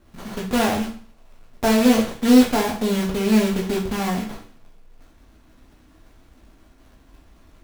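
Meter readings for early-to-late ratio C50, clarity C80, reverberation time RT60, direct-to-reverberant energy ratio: 7.0 dB, 12.0 dB, 0.45 s, −1.5 dB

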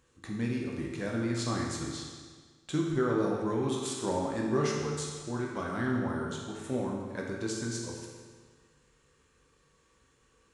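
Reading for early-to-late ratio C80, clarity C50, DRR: 3.0 dB, 1.0 dB, −2.5 dB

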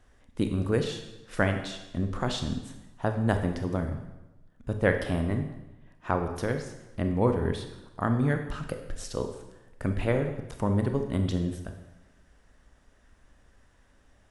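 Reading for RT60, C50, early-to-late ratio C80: 1.0 s, 7.5 dB, 9.5 dB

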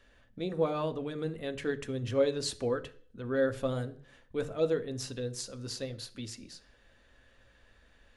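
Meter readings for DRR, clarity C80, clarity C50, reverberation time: 8.5 dB, 21.0 dB, 17.5 dB, 0.50 s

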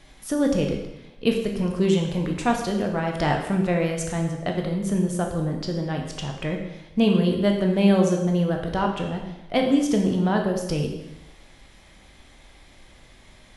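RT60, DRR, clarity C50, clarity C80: 0.95 s, 1.5 dB, 5.0 dB, 7.5 dB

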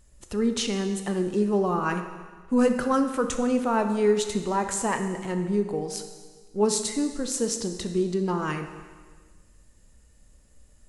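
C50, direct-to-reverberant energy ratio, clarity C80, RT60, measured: 8.0 dB, 6.5 dB, 9.5 dB, 1.5 s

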